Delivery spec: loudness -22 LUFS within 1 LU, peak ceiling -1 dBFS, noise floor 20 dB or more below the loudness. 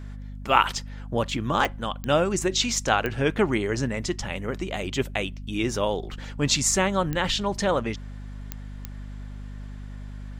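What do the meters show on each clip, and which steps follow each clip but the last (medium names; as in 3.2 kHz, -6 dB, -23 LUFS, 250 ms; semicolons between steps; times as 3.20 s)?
clicks found 6; hum 50 Hz; highest harmonic 250 Hz; hum level -34 dBFS; loudness -25.0 LUFS; peak level -2.0 dBFS; loudness target -22.0 LUFS
-> de-click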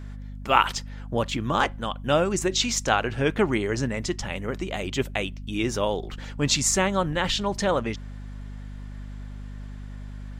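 clicks found 0; hum 50 Hz; highest harmonic 250 Hz; hum level -34 dBFS
-> de-hum 50 Hz, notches 5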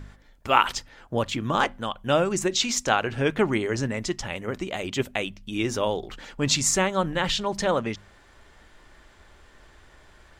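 hum not found; loudness -25.5 LUFS; peak level -2.0 dBFS; loudness target -22.0 LUFS
-> trim +3.5 dB; peak limiter -1 dBFS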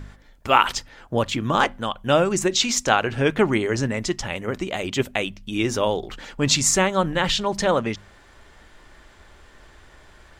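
loudness -22.0 LUFS; peak level -1.0 dBFS; noise floor -51 dBFS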